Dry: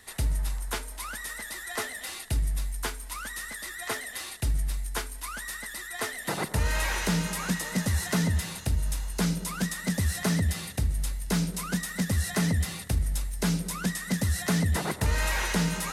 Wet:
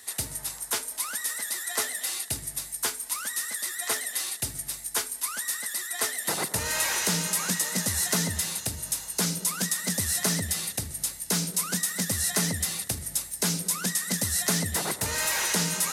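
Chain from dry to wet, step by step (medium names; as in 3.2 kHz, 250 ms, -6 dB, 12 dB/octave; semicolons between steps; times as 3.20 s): high-pass 86 Hz 24 dB/octave; tone controls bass -6 dB, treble +10 dB; 14.64–15.47 s: overload inside the chain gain 21 dB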